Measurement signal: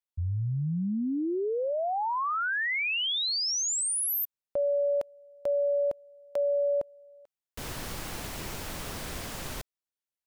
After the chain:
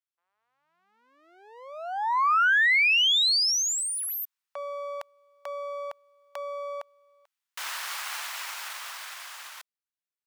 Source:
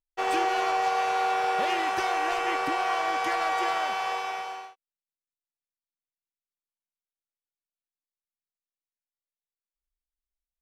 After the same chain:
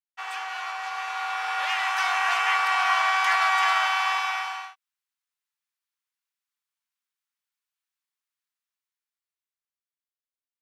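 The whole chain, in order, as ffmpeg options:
-filter_complex "[0:a]aeval=exprs='if(lt(val(0),0),0.708*val(0),val(0))':c=same,highpass=f=1k:w=0.5412,highpass=f=1k:w=1.3066,acrossover=split=5600[a][b];[b]acompressor=threshold=-37dB:ratio=4:attack=1:release=60[c];[a][c]amix=inputs=2:normalize=0,highshelf=f=4.3k:g=-6,dynaudnorm=f=110:g=31:m=11dB"

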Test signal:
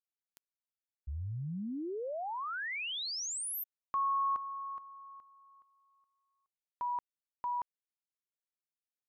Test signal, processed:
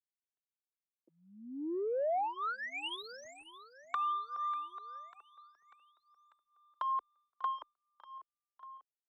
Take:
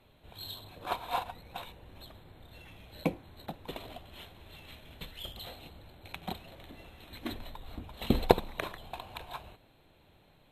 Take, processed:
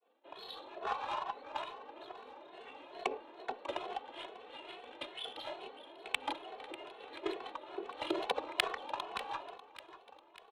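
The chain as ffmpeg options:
-filter_complex "[0:a]lowpass=4.1k,agate=range=-33dB:threshold=-56dB:ratio=3:release=61:detection=peak,highpass=f=250:w=0.5412,highpass=f=250:w=1.3066,tiltshelf=f=970:g=-5,acompressor=threshold=-42dB:ratio=12:attack=7.9:release=57:knee=6:detection=peak,aexciter=amount=2:drive=5:freq=2.6k,afreqshift=91,adynamicsmooth=sensitivity=3:basefreq=860,asplit=2[a][b];[b]aecho=0:1:594|1188|1782|2376|2970:0.158|0.0888|0.0497|0.0278|0.0156[c];[a][c]amix=inputs=2:normalize=0,asplit=2[d][e];[e]adelay=2.3,afreqshift=2.3[f];[d][f]amix=inputs=2:normalize=1,volume=14.5dB"

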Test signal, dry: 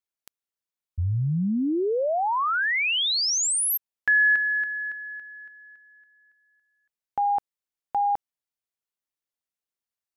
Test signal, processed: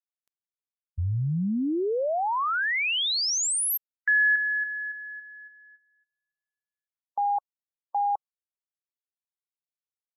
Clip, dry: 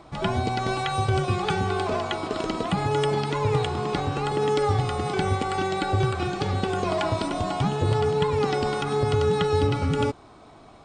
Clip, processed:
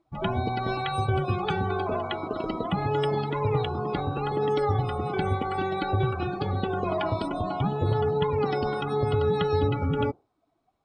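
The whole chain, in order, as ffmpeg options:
-af "afftdn=nr=26:nf=-33,volume=-2dB"

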